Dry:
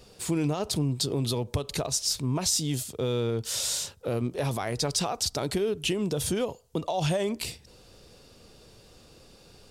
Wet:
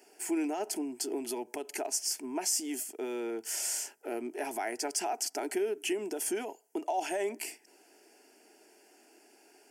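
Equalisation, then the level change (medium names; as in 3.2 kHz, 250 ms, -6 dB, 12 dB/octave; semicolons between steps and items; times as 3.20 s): high-pass 300 Hz 24 dB/octave; static phaser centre 770 Hz, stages 8; 0.0 dB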